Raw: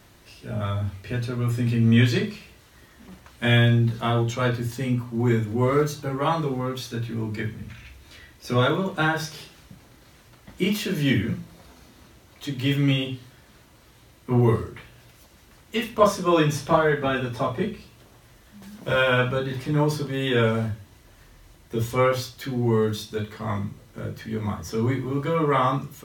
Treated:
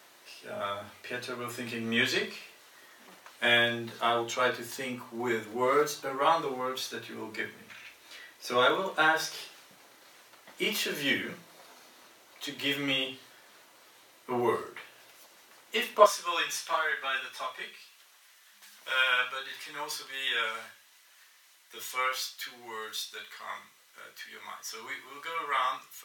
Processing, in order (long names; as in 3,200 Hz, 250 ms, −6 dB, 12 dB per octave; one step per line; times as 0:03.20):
high-pass filter 520 Hz 12 dB per octave, from 0:16.06 1,500 Hz